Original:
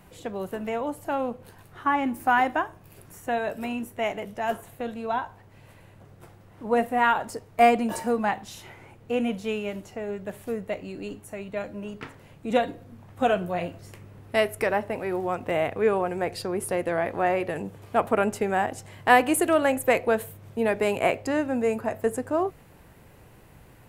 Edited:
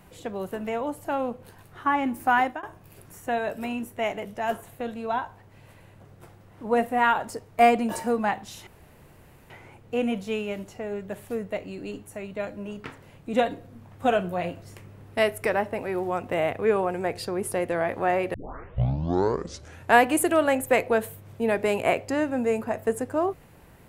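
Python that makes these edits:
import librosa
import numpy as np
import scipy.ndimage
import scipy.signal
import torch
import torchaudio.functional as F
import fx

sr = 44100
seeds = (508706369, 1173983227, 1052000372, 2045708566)

y = fx.edit(x, sr, fx.fade_out_to(start_s=2.35, length_s=0.28, curve='qsin', floor_db=-24.0),
    fx.insert_room_tone(at_s=8.67, length_s=0.83),
    fx.tape_start(start_s=17.51, length_s=1.69), tone=tone)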